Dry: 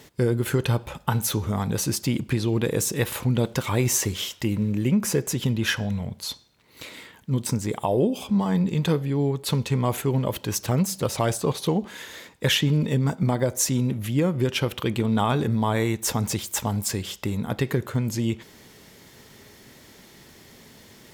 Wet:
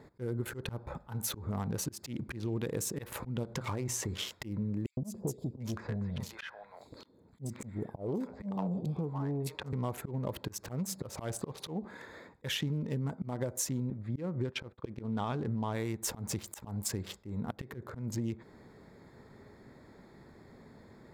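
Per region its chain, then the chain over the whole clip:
3.43–4.28 LPF 12000 Hz + notches 60/120 Hz + compressor 3:1, threshold -24 dBFS
4.86–9.73 three bands offset in time highs, lows, mids 0.11/0.74 s, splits 640/4100 Hz + core saturation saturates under 350 Hz
13.9–15.73 expander -26 dBFS + air absorption 65 m
whole clip: Wiener smoothing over 15 samples; auto swell 0.233 s; compressor 4:1, threshold -29 dBFS; gain -3 dB

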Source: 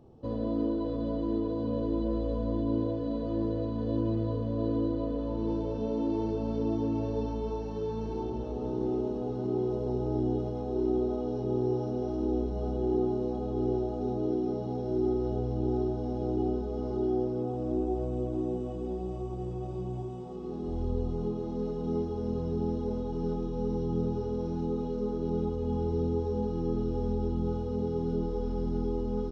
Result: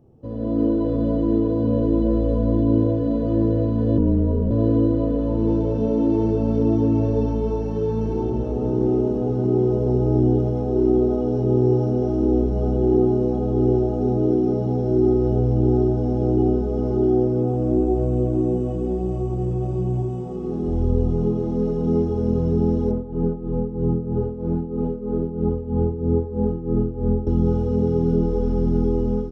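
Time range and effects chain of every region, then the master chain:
3.98–4.51 LPF 1200 Hz 6 dB/oct + frequency shift -29 Hz
22.91–27.27 LPF 2000 Hz + tremolo 3.1 Hz, depth 76%
whole clip: graphic EQ 125/1000/4000 Hz +4/-5/-11 dB; AGC gain up to 10.5 dB

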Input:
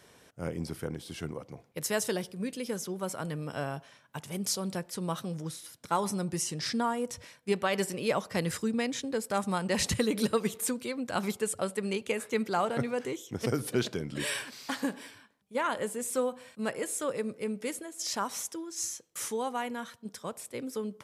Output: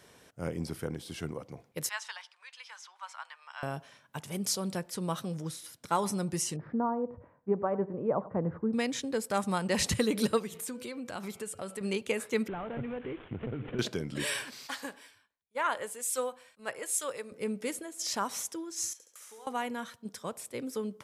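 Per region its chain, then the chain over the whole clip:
1.89–3.63 elliptic high-pass 900 Hz, stop band 70 dB + air absorption 130 m
6.56–8.73 LPF 1100 Hz 24 dB/oct + echo 94 ms -18 dB
10.39–11.81 de-hum 166.4 Hz, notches 19 + compressor 2.5:1, threshold -38 dBFS
12.48–13.79 CVSD 16 kbps + compressor 4:1, threshold -38 dBFS + low shelf 280 Hz +8.5 dB
14.67–17.32 bell 190 Hz -14 dB 2.2 oct + three-band expander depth 70%
18.93–19.47 HPF 540 Hz + compressor 8:1, threshold -49 dBFS + flutter echo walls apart 11.7 m, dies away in 0.75 s
whole clip: dry

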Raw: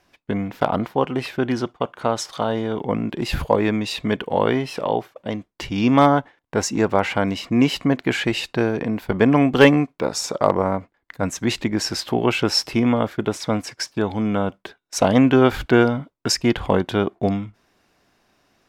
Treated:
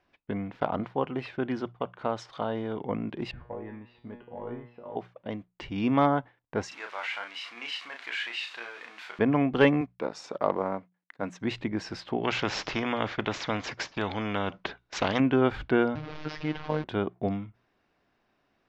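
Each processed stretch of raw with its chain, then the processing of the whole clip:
3.31–4.96 sample leveller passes 1 + tape spacing loss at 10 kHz 45 dB + resonator 120 Hz, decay 0.52 s, mix 90%
6.68–9.19 zero-crossing step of -27 dBFS + HPF 1500 Hz + doubler 34 ms -4.5 dB
9.81–11.4 G.711 law mismatch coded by A + HPF 170 Hz
12.24–15.2 careless resampling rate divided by 3×, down none, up filtered + spectral compressor 2:1
15.95–16.84 delta modulation 32 kbps, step -22.5 dBFS + robotiser 153 Hz + air absorption 64 m
whole clip: LPF 3300 Hz 12 dB/oct; notches 60/120/180 Hz; gain -8.5 dB

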